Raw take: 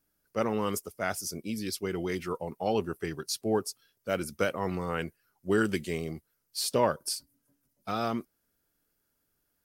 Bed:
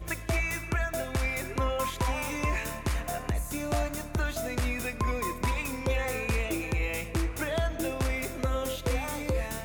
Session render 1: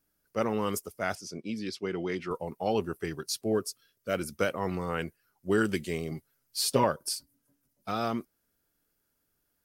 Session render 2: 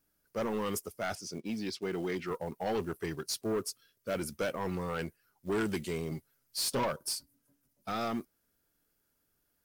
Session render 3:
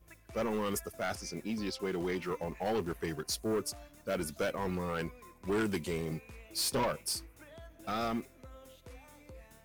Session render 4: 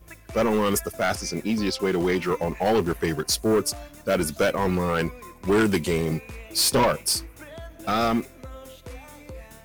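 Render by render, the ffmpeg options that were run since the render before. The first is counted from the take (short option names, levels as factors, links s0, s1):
-filter_complex "[0:a]asettb=1/sr,asplit=3[s0][s1][s2];[s0]atrim=end=1.154[s3];[s1]atrim=start=1.15:end=2.31,asetpts=PTS-STARTPTS,afade=t=in:d=0.004:c=qsin,afade=t=out:st=1.156:d=0.004:c=qsin,highpass=130,lowpass=4600[s4];[s2]atrim=start=2.306[s5];[s3][s4]acrossfade=d=0.004:c1=hsin:c2=qsin[s6];[s6][s5]acrossfade=d=0.004:c1=qsin:c2=hsin,asettb=1/sr,asplit=3[s7][s8][s9];[s7]atrim=end=3.524[s10];[s8]atrim=start=3.52:end=4.14,asetpts=PTS-STARTPTS,afade=t=in:d=0.004:c=qsin,afade=t=out:st=0.616:d=0.004:c=qsin,asuperstop=centerf=840:order=4:qfactor=3[s11];[s9]atrim=start=4.136[s12];[s10][s11]acrossfade=d=0.004:c1=hsin:c2=qsin[s13];[s13][s12]acrossfade=d=0.004:c1=qsin:c2=hsin,asettb=1/sr,asplit=3[s14][s15][s16];[s14]atrim=end=6.114[s17];[s15]atrim=start=6.11:end=6.84,asetpts=PTS-STARTPTS,afade=t=in:d=0.004:c=qsin,afade=t=out:st=0.726:d=0.004:c=qsin,aecho=1:1:7.4:0.85,atrim=end_sample=32193[s18];[s16]atrim=start=6.836[s19];[s17][s18]acrossfade=d=0.004:c1=hsin:c2=qsin[s20];[s20][s19]acrossfade=d=0.004:c1=qsin:c2=hsin"
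-af "acrusher=bits=6:mode=log:mix=0:aa=0.000001,asoftclip=type=tanh:threshold=0.0447"
-filter_complex "[1:a]volume=0.075[s0];[0:a][s0]amix=inputs=2:normalize=0"
-af "volume=3.76"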